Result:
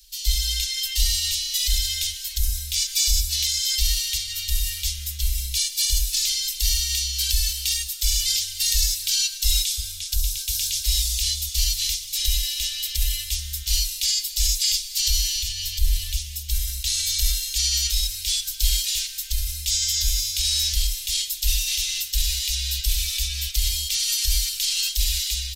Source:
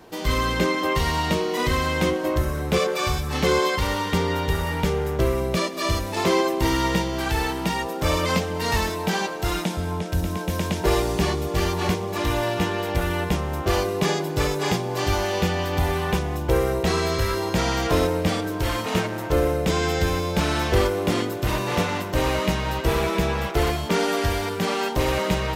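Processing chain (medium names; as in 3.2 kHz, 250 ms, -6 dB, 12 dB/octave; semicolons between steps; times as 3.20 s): 15.35–16.17 s: bass shelf 130 Hz +11 dB; level rider gain up to 6 dB; peak limiter -10 dBFS, peak gain reduction 8 dB; inverse Chebyshev band-stop 170–830 Hz, stop band 80 dB; peaking EQ 71 Hz +9 dB 0.84 oct; comb 4.4 ms, depth 52%; trim +8.5 dB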